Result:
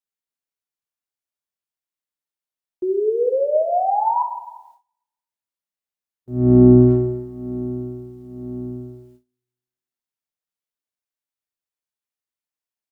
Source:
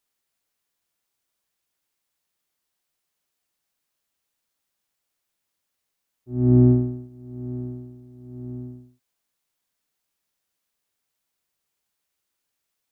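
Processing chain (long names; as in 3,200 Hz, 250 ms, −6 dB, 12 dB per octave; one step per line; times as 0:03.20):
far-end echo of a speakerphone 270 ms, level −7 dB
sound drawn into the spectrogram rise, 0:02.82–0:04.23, 360–1,000 Hz −26 dBFS
dense smooth reverb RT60 1.2 s, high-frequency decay 0.8×, DRR 4 dB
noise gate with hold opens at −43 dBFS
level +5.5 dB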